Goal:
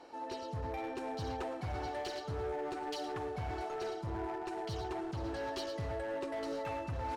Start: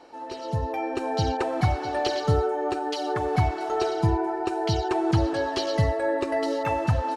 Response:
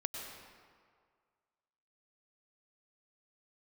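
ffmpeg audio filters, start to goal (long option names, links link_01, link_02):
-filter_complex "[0:a]areverse,acompressor=threshold=-31dB:ratio=4,areverse,volume=30.5dB,asoftclip=hard,volume=-30.5dB[link_01];[1:a]atrim=start_sample=2205,atrim=end_sample=4410,asetrate=38367,aresample=44100[link_02];[link_01][link_02]afir=irnorm=-1:irlink=0,volume=-3.5dB"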